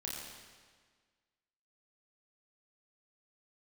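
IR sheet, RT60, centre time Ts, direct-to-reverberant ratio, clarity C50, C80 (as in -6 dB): 1.6 s, 95 ms, -4.0 dB, -0.5 dB, 1.0 dB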